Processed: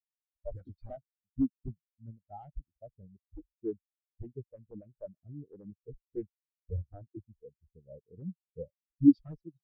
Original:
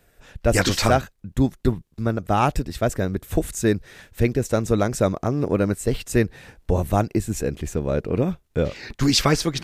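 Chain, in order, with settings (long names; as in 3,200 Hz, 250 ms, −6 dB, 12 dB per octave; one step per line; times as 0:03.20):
wrap-around overflow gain 9.5 dB
every bin expanded away from the loudest bin 4 to 1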